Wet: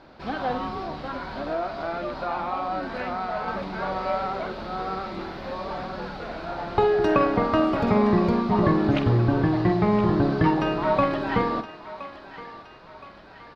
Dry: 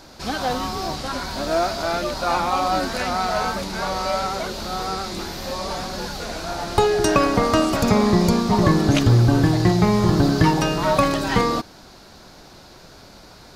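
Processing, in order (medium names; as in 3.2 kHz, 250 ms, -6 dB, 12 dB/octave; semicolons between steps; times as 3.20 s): bass shelf 140 Hz -7.5 dB; 0.79–3.48 s: compression 2:1, threshold -25 dBFS, peak gain reduction 5 dB; distance through air 390 m; doubling 48 ms -11.5 dB; thinning echo 1019 ms, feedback 57%, high-pass 820 Hz, level -12.5 dB; trim -1.5 dB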